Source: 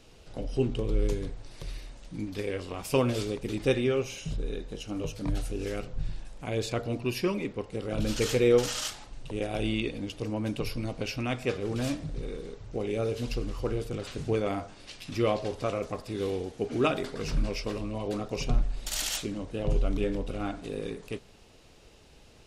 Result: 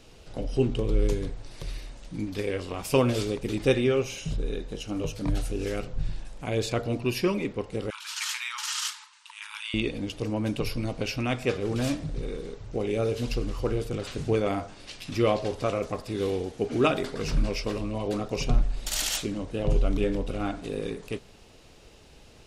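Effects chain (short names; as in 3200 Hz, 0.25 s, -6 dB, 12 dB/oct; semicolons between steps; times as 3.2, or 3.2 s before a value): 7.9–9.74 brick-wall FIR band-pass 860–13000 Hz; gain +3 dB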